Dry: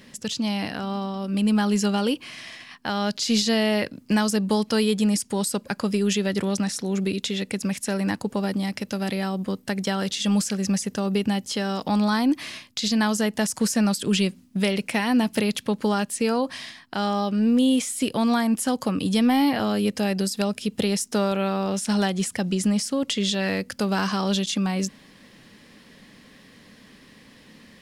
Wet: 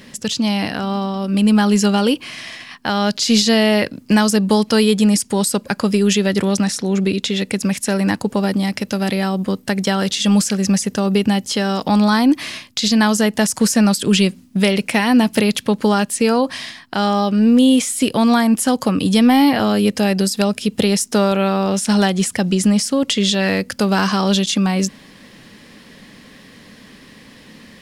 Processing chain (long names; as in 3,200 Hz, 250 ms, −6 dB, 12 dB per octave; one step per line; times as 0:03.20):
0:06.75–0:07.36: high-shelf EQ 10,000 Hz −9 dB
level +7.5 dB